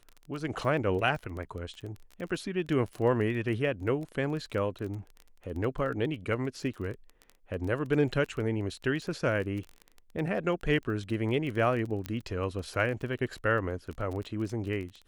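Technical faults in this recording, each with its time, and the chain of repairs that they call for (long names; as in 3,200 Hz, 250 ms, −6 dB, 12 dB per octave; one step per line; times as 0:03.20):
surface crackle 21 per second −36 dBFS
0:12.06: click −19 dBFS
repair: click removal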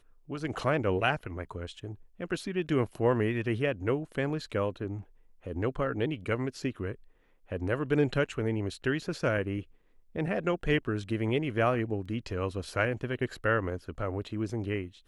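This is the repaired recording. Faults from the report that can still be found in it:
0:12.06: click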